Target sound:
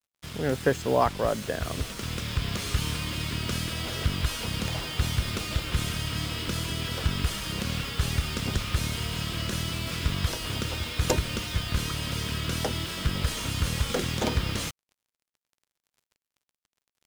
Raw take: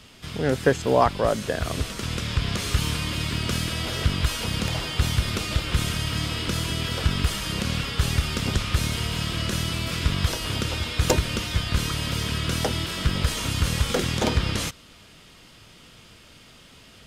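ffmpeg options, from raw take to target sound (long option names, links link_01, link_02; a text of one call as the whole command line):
ffmpeg -i in.wav -af "acrusher=bits=5:mix=0:aa=0.5,volume=-4dB" out.wav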